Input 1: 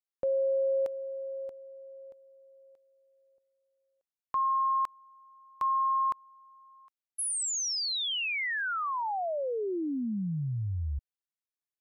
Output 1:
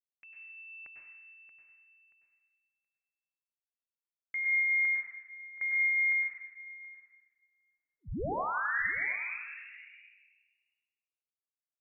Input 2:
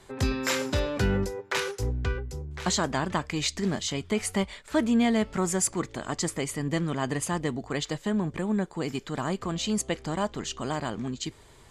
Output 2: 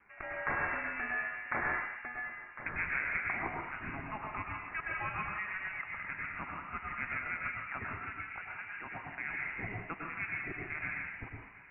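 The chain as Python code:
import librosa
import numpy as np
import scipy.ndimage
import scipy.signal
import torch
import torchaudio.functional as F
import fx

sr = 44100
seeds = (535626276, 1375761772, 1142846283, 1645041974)

y = scipy.signal.sosfilt(scipy.signal.butter(4, 1000.0, 'highpass', fs=sr, output='sos'), x)
y = fx.gate_hold(y, sr, open_db=-54.0, close_db=-66.0, hold_ms=71.0, range_db=-21, attack_ms=0.18, release_ms=45.0)
y = y + 10.0 ** (-19.5 / 20.0) * np.pad(y, (int(724 * sr / 1000.0), 0))[:len(y)]
y = fx.rev_plate(y, sr, seeds[0], rt60_s=1.3, hf_ratio=0.4, predelay_ms=90, drr_db=-2.5)
y = fx.freq_invert(y, sr, carrier_hz=3200)
y = F.gain(torch.from_numpy(y), -4.0).numpy()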